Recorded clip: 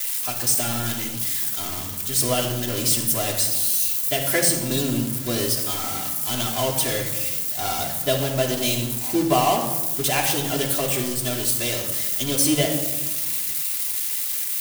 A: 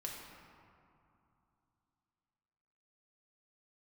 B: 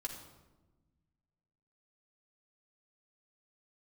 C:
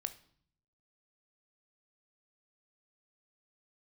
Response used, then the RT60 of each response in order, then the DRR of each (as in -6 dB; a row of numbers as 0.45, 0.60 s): B; 2.7, 1.2, 0.55 s; -2.0, -1.5, 9.0 dB